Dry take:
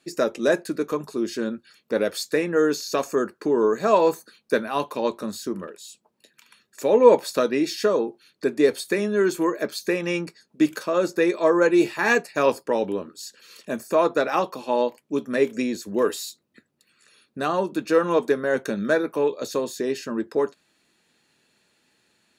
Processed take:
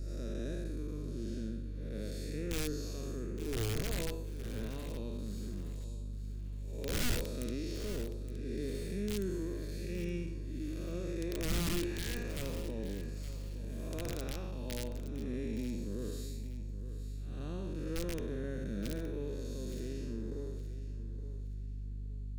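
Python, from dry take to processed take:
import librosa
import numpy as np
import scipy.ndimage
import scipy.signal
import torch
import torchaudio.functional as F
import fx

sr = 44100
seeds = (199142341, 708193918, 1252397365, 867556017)

y = fx.spec_blur(x, sr, span_ms=272.0)
y = (np.mod(10.0 ** (17.0 / 20.0) * y + 1.0, 2.0) - 1.0) / 10.0 ** (17.0 / 20.0)
y = fx.add_hum(y, sr, base_hz=50, snr_db=12)
y = fx.tone_stack(y, sr, knobs='10-0-1')
y = fx.echo_feedback(y, sr, ms=868, feedback_pct=30, wet_db=-12.5)
y = y * 10.0 ** (9.0 / 20.0)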